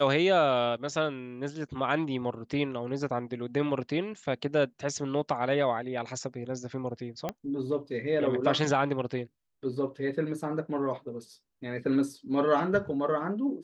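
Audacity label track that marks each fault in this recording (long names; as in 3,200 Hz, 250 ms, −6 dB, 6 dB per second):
7.290000	7.290000	click −18 dBFS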